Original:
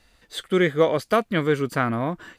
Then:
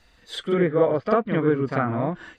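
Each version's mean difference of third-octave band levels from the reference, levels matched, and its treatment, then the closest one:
6.0 dB: spectral magnitudes quantised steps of 15 dB
treble cut that deepens with the level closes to 1,400 Hz, closed at −19 dBFS
parametric band 11,000 Hz −10.5 dB 0.56 octaves
backwards echo 46 ms −5 dB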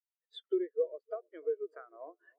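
17.0 dB: Butterworth high-pass 330 Hz 48 dB per octave
downward compressor 10 to 1, threshold −34 dBFS, peak gain reduction 20.5 dB
on a send: bucket-brigade delay 308 ms, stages 2,048, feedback 59%, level −13 dB
on the sum: every bin expanded away from the loudest bin 2.5 to 1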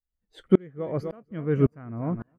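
11.5 dB: noise reduction from a noise print of the clip's start 15 dB
spectral tilt −4 dB per octave
repeating echo 251 ms, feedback 41%, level −18 dB
tremolo with a ramp in dB swelling 1.8 Hz, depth 36 dB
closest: first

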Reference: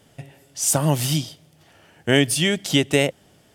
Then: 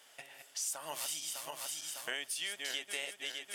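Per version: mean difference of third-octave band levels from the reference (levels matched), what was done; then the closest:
13.5 dB: feedback delay that plays each chunk backwards 302 ms, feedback 62%, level −7 dB
high-pass filter 990 Hz 12 dB per octave
downward compressor 4 to 1, threshold −39 dBFS, peak gain reduction 18.5 dB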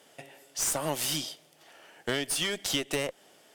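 7.5 dB: high-pass filter 400 Hz 12 dB per octave
downward compressor 6 to 1, threshold −24 dBFS, peak gain reduction 10.5 dB
asymmetric clip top −30 dBFS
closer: second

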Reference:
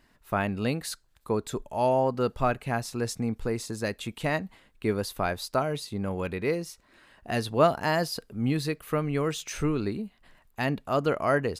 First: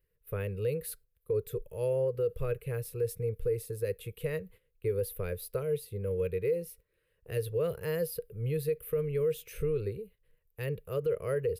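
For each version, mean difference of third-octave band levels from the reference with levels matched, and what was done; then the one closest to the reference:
8.5 dB: drawn EQ curve 110 Hz 0 dB, 180 Hz −7 dB, 250 Hz −29 dB, 480 Hz +8 dB, 720 Hz −28 dB, 1,100 Hz −18 dB, 2,500 Hz −9 dB, 4,200 Hz −16 dB, 6,900 Hz −18 dB, 12,000 Hz +5 dB
noise gate −53 dBFS, range −10 dB
brickwall limiter −22 dBFS, peak gain reduction 10 dB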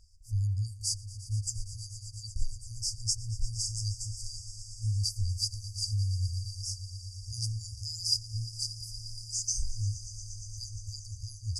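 24.0 dB: low-pass filter 8,500 Hz 24 dB per octave
brick-wall band-stop 110–4,600 Hz
on a send: echo that builds up and dies away 117 ms, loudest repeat 5, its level −17.5 dB
on the sum: level +8.5 dB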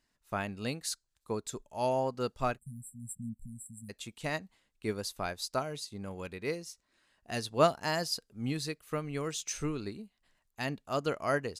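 5.0 dB: time-frequency box erased 0:02.58–0:03.89, 240–7,400 Hz
parametric band 6,600 Hz +11 dB 1.7 octaves
expander for the loud parts 1.5 to 1, over −42 dBFS
level −3.5 dB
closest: third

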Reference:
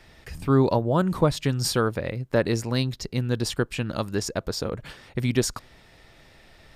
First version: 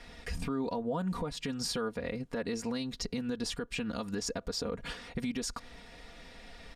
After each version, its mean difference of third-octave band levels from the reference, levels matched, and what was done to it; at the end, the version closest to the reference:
6.0 dB: low-pass filter 9,900 Hz 12 dB per octave
comb filter 4.2 ms, depth 80%
downward compressor 8 to 1, threshold −29 dBFS, peak gain reduction 16.5 dB
brickwall limiter −25 dBFS, peak gain reduction 7.5 dB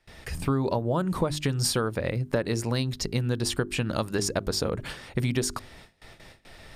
4.5 dB: noise gate with hold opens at −42 dBFS
parametric band 9,200 Hz +5 dB 0.26 octaves
mains-hum notches 50/100/150/200/250/300/350/400 Hz
downward compressor 6 to 1, threshold −27 dBFS, peak gain reduction 12 dB
level +4.5 dB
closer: second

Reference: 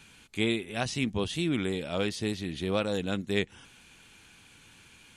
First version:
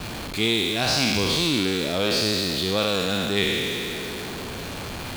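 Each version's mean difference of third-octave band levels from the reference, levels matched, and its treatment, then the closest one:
12.5 dB: peak hold with a decay on every bin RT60 2.06 s
parametric band 4,400 Hz +12.5 dB 0.65 octaves
in parallel at −6 dB: comparator with hysteresis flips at −45.5 dBFS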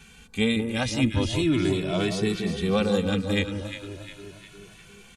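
4.5 dB: low-shelf EQ 92 Hz +9 dB
delay that swaps between a low-pass and a high-pass 177 ms, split 1,200 Hz, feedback 70%, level −6 dB
barber-pole flanger 2.2 ms +0.39 Hz
level +6.5 dB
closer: second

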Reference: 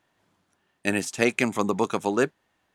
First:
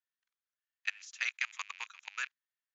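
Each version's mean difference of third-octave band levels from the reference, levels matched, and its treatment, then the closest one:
18.5 dB: loose part that buzzes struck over −38 dBFS, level −18 dBFS
Chebyshev low-pass filter 7,100 Hz, order 8
output level in coarse steps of 23 dB
high-pass filter 1,400 Hz 24 dB per octave
level −4 dB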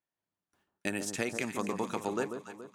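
6.0 dB: high-shelf EQ 11,000 Hz +7 dB
noise gate with hold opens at −54 dBFS
downward compressor, threshold −26 dBFS, peak gain reduction 10 dB
on a send: delay that swaps between a low-pass and a high-pass 141 ms, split 1,300 Hz, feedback 66%, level −6.5 dB
on the sum: level −3.5 dB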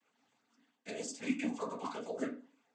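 8.5 dB: dynamic equaliser 1,600 Hz, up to −6 dB, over −38 dBFS, Q 1.3
reversed playback
downward compressor 6 to 1, threshold −31 dBFS, peak gain reduction 14 dB
reversed playback
stiff-string resonator 250 Hz, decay 0.43 s, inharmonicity 0.008
cochlear-implant simulation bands 16
level +12 dB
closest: second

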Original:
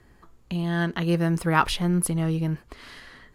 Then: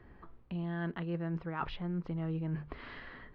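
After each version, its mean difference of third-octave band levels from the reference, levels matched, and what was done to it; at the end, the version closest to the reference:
6.0 dB: mains-hum notches 50/100/150 Hz
reversed playback
downward compressor 6 to 1, threshold −34 dBFS, peak gain reduction 18.5 dB
reversed playback
Gaussian smoothing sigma 2.9 samples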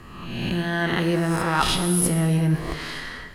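8.0 dB: peak hold with a rise ahead of every peak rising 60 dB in 0.94 s
reversed playback
downward compressor 6 to 1, threshold −28 dBFS, peak gain reduction 14.5 dB
reversed playback
dense smooth reverb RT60 1.3 s, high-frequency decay 0.9×, DRR 6.5 dB
level +8.5 dB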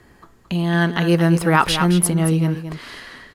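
3.0 dB: low-shelf EQ 79 Hz −10 dB
single-tap delay 222 ms −10.5 dB
boost into a limiter +9 dB
level −1 dB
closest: third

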